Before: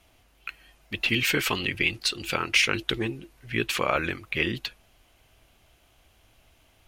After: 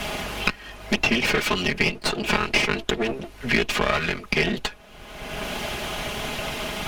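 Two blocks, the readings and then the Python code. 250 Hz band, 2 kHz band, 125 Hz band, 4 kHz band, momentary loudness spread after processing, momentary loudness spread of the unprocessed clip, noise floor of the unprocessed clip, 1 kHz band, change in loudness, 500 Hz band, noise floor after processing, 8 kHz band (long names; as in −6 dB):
+5.5 dB, +3.5 dB, +4.0 dB, +2.5 dB, 11 LU, 18 LU, −62 dBFS, +5.5 dB, +2.0 dB, +6.0 dB, −45 dBFS, +1.5 dB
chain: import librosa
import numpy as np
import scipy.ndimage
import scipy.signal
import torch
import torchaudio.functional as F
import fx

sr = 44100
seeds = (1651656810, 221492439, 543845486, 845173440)

y = fx.lower_of_two(x, sr, delay_ms=4.8)
y = fx.high_shelf(y, sr, hz=6700.0, db=-11.0)
y = fx.band_squash(y, sr, depth_pct=100)
y = y * 10.0 ** (6.0 / 20.0)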